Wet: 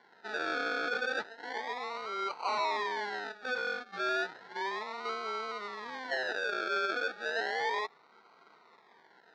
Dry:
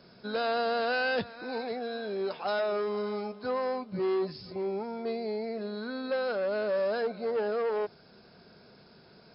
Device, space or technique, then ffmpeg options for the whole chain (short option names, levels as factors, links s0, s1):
circuit-bent sampling toy: -af "acrusher=samples=35:mix=1:aa=0.000001:lfo=1:lforange=21:lforate=0.33,highpass=570,equalizer=f=580:t=q:w=4:g=-7,equalizer=f=930:t=q:w=4:g=5,equalizer=f=1400:t=q:w=4:g=7,equalizer=f=1900:t=q:w=4:g=5,equalizer=f=2800:t=q:w=4:g=-9,equalizer=f=4000:t=q:w=4:g=4,lowpass=f=4600:w=0.5412,lowpass=f=4600:w=1.3066,volume=0.891"